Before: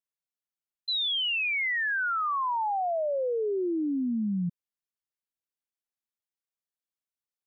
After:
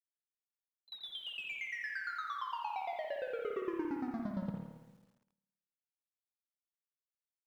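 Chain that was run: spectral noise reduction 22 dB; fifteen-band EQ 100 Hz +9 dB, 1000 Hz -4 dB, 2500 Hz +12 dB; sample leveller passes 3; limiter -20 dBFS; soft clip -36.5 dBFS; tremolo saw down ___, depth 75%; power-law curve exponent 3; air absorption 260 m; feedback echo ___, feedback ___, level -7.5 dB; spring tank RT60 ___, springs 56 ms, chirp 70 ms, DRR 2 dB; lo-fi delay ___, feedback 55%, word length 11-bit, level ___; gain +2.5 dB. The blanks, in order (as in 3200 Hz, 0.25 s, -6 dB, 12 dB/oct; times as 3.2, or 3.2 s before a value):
8.7 Hz, 86 ms, 32%, 1 s, 0.136 s, -13 dB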